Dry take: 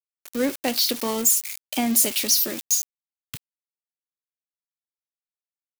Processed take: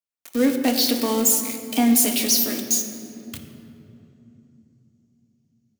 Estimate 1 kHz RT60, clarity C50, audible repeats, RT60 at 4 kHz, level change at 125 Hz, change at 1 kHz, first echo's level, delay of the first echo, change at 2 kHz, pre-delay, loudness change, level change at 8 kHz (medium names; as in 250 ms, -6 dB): 2.7 s, 6.5 dB, no echo, 1.8 s, +5.5 dB, +3.0 dB, no echo, no echo, +1.5 dB, 3 ms, +1.5 dB, +0.5 dB